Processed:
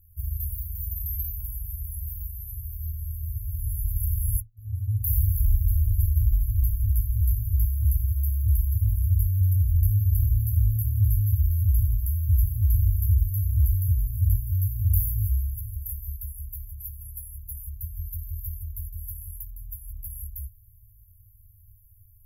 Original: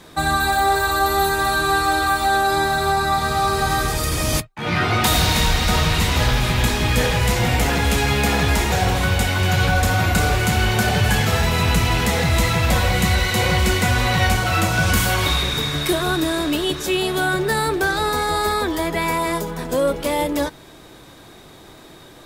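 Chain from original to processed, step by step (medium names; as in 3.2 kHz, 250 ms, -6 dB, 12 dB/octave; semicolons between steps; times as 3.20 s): FFT band-reject 110–11000 Hz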